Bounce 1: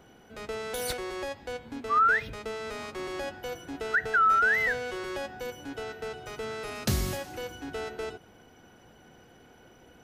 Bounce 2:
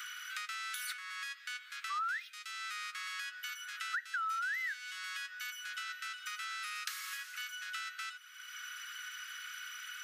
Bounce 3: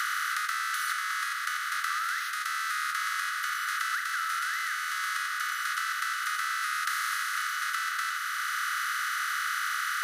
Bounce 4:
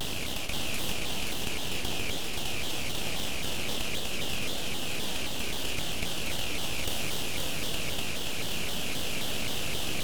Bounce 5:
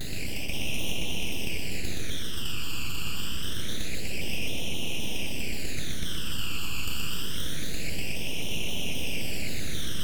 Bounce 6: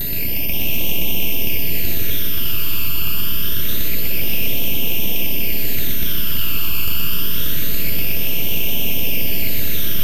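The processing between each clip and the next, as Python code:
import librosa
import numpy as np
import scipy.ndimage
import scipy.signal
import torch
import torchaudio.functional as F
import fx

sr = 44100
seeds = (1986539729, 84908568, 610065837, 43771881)

y1 = scipy.signal.sosfilt(scipy.signal.butter(16, 1200.0, 'highpass', fs=sr, output='sos'), x)
y1 = fx.band_squash(y1, sr, depth_pct=100)
y1 = F.gain(torch.from_numpy(y1), -1.0).numpy()
y2 = fx.bin_compress(y1, sr, power=0.2)
y2 = fx.peak_eq(y2, sr, hz=2400.0, db=-4.0, octaves=0.99)
y3 = np.abs(y2)
y3 = y3 + 10.0 ** (-3.5 / 20.0) * np.pad(y3, (int(526 * sr / 1000.0), 0))[:len(y3)]
y3 = fx.vibrato_shape(y3, sr, shape='saw_down', rate_hz=3.8, depth_cents=250.0)
y4 = fx.phaser_stages(y3, sr, stages=12, low_hz=640.0, high_hz=1500.0, hz=0.26, feedback_pct=35)
y4 = y4 + 10.0 ** (-5.0 / 20.0) * np.pad(y4, (int(122 * sr / 1000.0), 0))[:len(y4)]
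y5 = np.repeat(scipy.signal.resample_poly(y4, 1, 3), 3)[:len(y4)]
y5 = fx.echo_split(y5, sr, split_hz=440.0, low_ms=168, high_ms=584, feedback_pct=52, wet_db=-8.5)
y5 = y5 + 10.0 ** (-30.0 / 20.0) * np.sin(2.0 * np.pi * 13000.0 * np.arange(len(y5)) / sr)
y5 = F.gain(torch.from_numpy(y5), 7.0).numpy()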